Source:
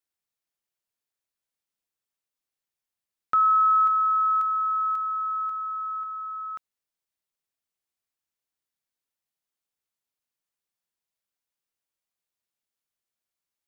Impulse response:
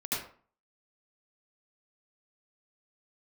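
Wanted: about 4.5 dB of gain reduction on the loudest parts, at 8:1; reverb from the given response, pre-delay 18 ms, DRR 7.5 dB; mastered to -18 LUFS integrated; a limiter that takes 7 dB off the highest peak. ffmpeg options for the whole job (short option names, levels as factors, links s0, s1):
-filter_complex "[0:a]acompressor=threshold=0.0794:ratio=8,alimiter=limit=0.0708:level=0:latency=1,asplit=2[s0][s1];[1:a]atrim=start_sample=2205,adelay=18[s2];[s1][s2]afir=irnorm=-1:irlink=0,volume=0.224[s3];[s0][s3]amix=inputs=2:normalize=0,volume=4.47"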